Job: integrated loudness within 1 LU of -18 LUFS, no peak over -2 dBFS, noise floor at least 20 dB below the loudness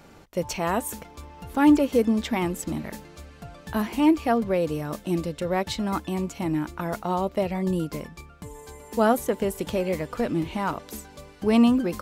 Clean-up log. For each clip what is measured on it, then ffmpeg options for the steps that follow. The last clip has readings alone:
loudness -25.0 LUFS; peak -8.0 dBFS; loudness target -18.0 LUFS
-> -af "volume=7dB,alimiter=limit=-2dB:level=0:latency=1"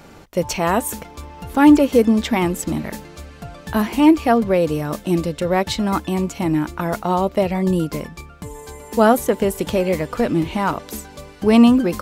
loudness -18.5 LUFS; peak -2.0 dBFS; noise floor -42 dBFS

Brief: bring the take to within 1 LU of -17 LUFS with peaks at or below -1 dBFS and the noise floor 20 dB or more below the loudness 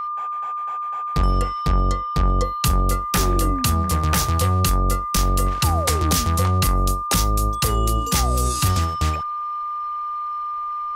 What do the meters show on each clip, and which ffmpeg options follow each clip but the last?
steady tone 1200 Hz; tone level -24 dBFS; loudness -21.5 LUFS; peak -8.0 dBFS; loudness target -17.0 LUFS
-> -af "bandreject=f=1.2k:w=30"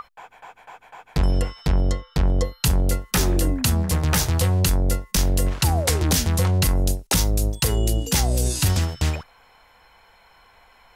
steady tone none; loudness -22.0 LUFS; peak -9.0 dBFS; loudness target -17.0 LUFS
-> -af "volume=5dB"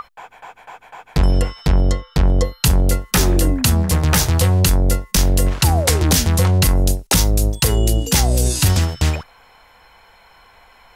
loudness -17.0 LUFS; peak -4.0 dBFS; noise floor -50 dBFS

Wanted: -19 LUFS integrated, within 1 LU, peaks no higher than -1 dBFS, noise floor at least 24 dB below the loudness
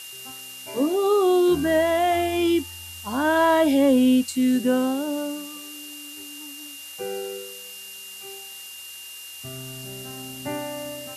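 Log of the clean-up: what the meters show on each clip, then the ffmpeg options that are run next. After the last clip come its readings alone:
steady tone 2800 Hz; tone level -40 dBFS; noise floor -40 dBFS; noise floor target -46 dBFS; loudness -22.0 LUFS; peak -9.0 dBFS; loudness target -19.0 LUFS
-> -af "bandreject=f=2.8k:w=30"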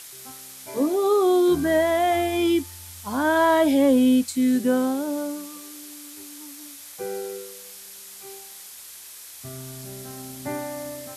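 steady tone none; noise floor -43 dBFS; noise floor target -46 dBFS
-> -af "afftdn=nr=6:nf=-43"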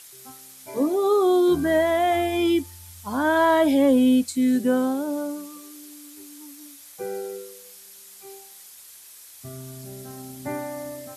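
noise floor -46 dBFS; loudness -22.0 LUFS; peak -9.0 dBFS; loudness target -19.0 LUFS
-> -af "volume=3dB"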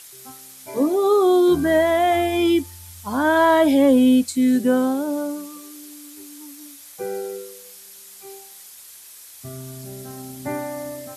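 loudness -19.0 LUFS; peak -6.0 dBFS; noise floor -43 dBFS

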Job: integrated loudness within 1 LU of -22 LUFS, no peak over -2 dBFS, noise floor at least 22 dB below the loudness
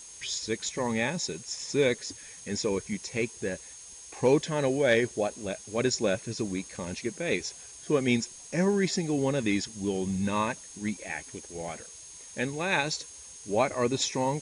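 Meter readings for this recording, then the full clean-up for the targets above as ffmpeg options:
steady tone 6500 Hz; tone level -47 dBFS; noise floor -47 dBFS; noise floor target -52 dBFS; loudness -29.5 LUFS; peak -12.0 dBFS; loudness target -22.0 LUFS
-> -af "bandreject=f=6.5k:w=30"
-af "afftdn=nr=6:nf=-47"
-af "volume=7.5dB"

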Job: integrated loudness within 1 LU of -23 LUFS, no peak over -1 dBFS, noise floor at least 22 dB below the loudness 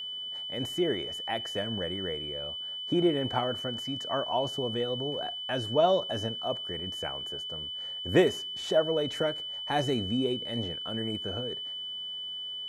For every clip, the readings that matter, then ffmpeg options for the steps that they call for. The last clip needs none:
steady tone 3000 Hz; tone level -35 dBFS; loudness -30.5 LUFS; peak -11.0 dBFS; loudness target -23.0 LUFS
-> -af "bandreject=f=3k:w=30"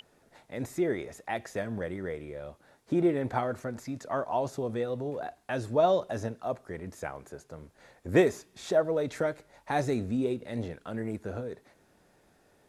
steady tone none; loudness -31.5 LUFS; peak -10.5 dBFS; loudness target -23.0 LUFS
-> -af "volume=8.5dB"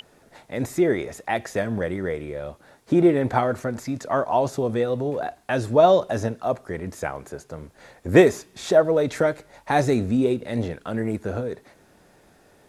loudness -23.0 LUFS; peak -2.0 dBFS; noise floor -57 dBFS

